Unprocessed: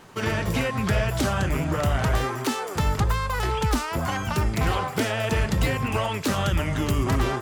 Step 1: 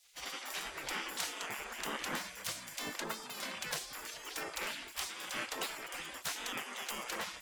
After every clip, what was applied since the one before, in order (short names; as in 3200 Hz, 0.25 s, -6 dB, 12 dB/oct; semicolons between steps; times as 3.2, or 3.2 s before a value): spectral gate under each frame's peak -20 dB weak; gain -5 dB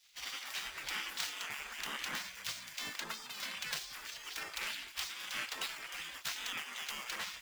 median filter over 5 samples; passive tone stack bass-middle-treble 5-5-5; gain +10.5 dB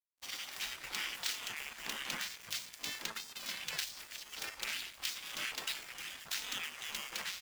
bands offset in time lows, highs 60 ms, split 1300 Hz; crossover distortion -51.5 dBFS; gain +3 dB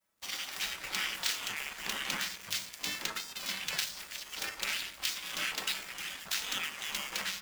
on a send at -8.5 dB: requantised 12-bit, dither triangular + reverb RT60 0.60 s, pre-delay 5 ms; on the sum: gain +4.5 dB